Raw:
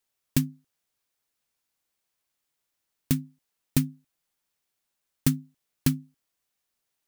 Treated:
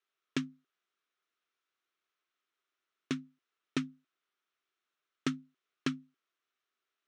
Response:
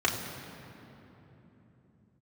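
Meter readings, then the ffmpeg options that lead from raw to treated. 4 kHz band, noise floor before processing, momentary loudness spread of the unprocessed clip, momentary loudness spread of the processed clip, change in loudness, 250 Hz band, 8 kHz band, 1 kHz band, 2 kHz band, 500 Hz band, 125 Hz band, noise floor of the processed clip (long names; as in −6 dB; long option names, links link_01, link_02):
−5.0 dB, −82 dBFS, 8 LU, 8 LU, −10.0 dB, −8.0 dB, −15.5 dB, +1.5 dB, −1.0 dB, −1.5 dB, −17.5 dB, below −85 dBFS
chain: -af "highpass=360,equalizer=frequency=380:width_type=q:width=4:gain=6,equalizer=frequency=540:width_type=q:width=4:gain=-6,equalizer=frequency=850:width_type=q:width=4:gain=-9,equalizer=frequency=1300:width_type=q:width=4:gain=8,equalizer=frequency=4700:width_type=q:width=4:gain=-9,lowpass=frequency=5100:width=0.5412,lowpass=frequency=5100:width=1.3066,volume=-1.5dB"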